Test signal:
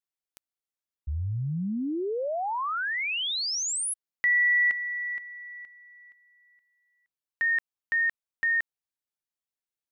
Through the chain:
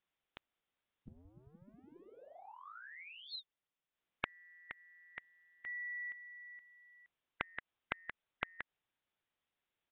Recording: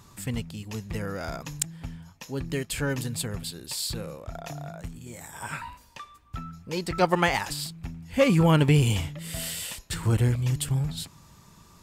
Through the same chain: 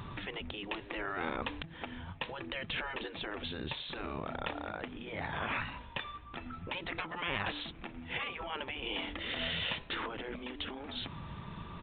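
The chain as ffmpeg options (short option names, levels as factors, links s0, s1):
-af "acompressor=threshold=0.0224:ratio=8:attack=2.8:release=200:knee=6:detection=peak,aresample=8000,aresample=44100,afftfilt=real='re*lt(hypot(re,im),0.0355)':imag='im*lt(hypot(re,im),0.0355)':win_size=1024:overlap=0.75,volume=2.82"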